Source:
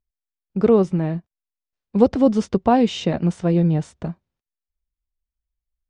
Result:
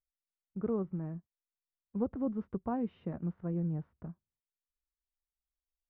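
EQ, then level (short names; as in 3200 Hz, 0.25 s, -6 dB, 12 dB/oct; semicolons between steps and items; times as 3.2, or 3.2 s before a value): ladder low-pass 1500 Hz, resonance 35%; bell 770 Hz -9.5 dB 2 oct; -7.0 dB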